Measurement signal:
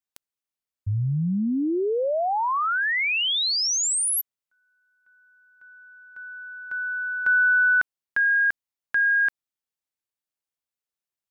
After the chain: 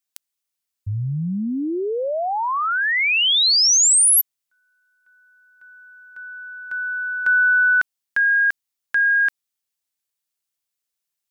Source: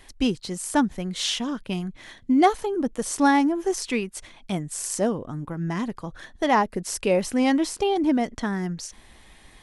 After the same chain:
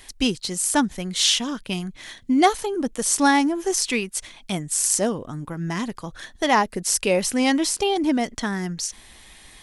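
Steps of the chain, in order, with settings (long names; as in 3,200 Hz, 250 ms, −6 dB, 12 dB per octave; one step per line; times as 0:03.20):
high-shelf EQ 2,300 Hz +10 dB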